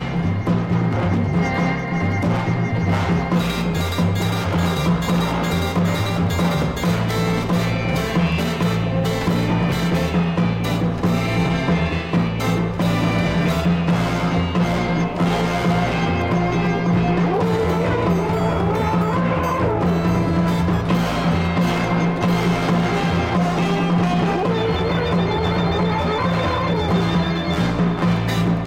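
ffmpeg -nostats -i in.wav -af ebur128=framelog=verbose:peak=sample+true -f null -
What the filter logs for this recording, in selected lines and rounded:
Integrated loudness:
  I:         -19.5 LUFS
  Threshold: -29.5 LUFS
Loudness range:
  LRA:         1.0 LU
  Threshold: -39.4 LUFS
  LRA low:   -20.0 LUFS
  LRA high:  -18.9 LUFS
Sample peak:
  Peak:       -7.9 dBFS
True peak:
  Peak:       -7.9 dBFS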